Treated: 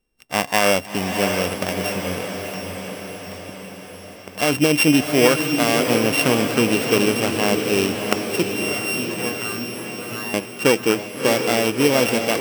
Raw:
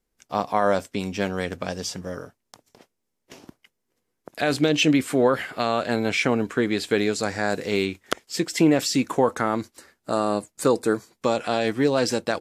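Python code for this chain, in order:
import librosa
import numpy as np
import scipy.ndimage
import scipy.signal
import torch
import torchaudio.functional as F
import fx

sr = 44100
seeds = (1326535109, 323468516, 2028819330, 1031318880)

y = np.r_[np.sort(x[:len(x) // 16 * 16].reshape(-1, 16), axis=1).ravel(), x[len(x) // 16 * 16:]]
y = fx.comb_fb(y, sr, f0_hz=120.0, decay_s=0.34, harmonics='all', damping=0.0, mix_pct=100, at=(8.43, 10.34))
y = fx.echo_diffused(y, sr, ms=667, feedback_pct=60, wet_db=-5.5)
y = y * 10.0 ** (3.5 / 20.0)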